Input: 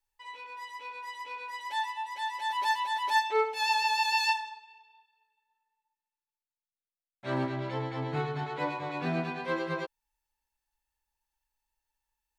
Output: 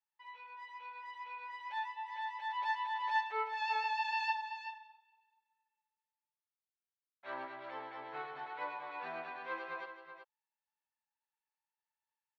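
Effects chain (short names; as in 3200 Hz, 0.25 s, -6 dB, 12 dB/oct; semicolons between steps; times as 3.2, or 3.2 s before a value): HPF 970 Hz 12 dB/oct; tape spacing loss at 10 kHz 35 dB; on a send: echo 0.378 s -10 dB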